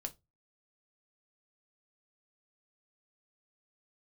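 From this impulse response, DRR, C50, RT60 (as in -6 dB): 6.0 dB, 21.0 dB, 0.20 s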